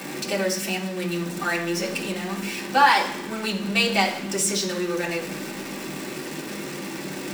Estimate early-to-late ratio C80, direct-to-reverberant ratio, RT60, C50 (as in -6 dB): 12.0 dB, -3.5 dB, 0.75 s, 9.0 dB